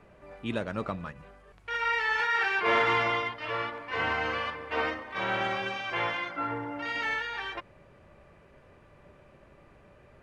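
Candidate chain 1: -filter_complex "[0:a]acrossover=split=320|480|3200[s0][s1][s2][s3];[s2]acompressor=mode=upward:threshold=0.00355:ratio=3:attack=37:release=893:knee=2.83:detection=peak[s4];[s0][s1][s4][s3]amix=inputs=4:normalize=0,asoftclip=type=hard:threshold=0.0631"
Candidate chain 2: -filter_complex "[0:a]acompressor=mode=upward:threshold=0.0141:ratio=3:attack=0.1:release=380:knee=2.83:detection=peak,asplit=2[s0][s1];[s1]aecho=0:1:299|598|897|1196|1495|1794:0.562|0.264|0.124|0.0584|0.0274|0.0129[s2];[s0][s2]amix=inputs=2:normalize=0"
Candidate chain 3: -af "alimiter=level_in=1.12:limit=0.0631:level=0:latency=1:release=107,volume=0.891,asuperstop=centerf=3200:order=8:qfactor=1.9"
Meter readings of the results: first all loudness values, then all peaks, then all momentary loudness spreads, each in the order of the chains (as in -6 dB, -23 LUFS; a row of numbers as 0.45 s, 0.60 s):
-30.5 LUFS, -28.5 LUFS, -34.5 LUFS; -24.0 dBFS, -13.5 dBFS, -23.0 dBFS; 10 LU, 21 LU, 9 LU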